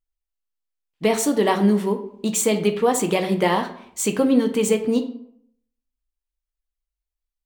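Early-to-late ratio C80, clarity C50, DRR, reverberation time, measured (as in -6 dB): 14.5 dB, 11.0 dB, 6.0 dB, 0.65 s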